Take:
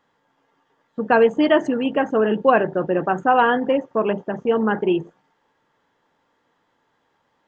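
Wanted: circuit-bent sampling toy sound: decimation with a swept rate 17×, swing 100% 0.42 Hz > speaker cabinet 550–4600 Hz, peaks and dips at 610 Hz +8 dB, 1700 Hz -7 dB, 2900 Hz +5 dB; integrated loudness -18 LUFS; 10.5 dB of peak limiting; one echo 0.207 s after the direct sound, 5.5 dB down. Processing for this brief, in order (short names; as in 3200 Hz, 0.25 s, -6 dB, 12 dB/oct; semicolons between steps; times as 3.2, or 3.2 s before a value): limiter -13 dBFS; echo 0.207 s -5.5 dB; decimation with a swept rate 17×, swing 100% 0.42 Hz; speaker cabinet 550–4600 Hz, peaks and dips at 610 Hz +8 dB, 1700 Hz -7 dB, 2900 Hz +5 dB; gain +5 dB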